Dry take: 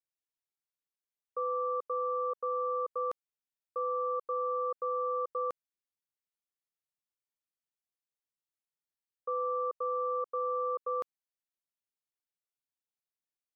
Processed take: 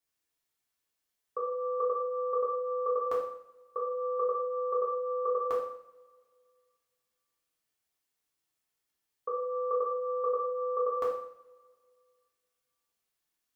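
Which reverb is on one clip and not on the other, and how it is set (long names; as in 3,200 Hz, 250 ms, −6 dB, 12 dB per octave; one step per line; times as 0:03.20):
coupled-rooms reverb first 0.61 s, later 2.1 s, from −24 dB, DRR −6 dB
level +3.5 dB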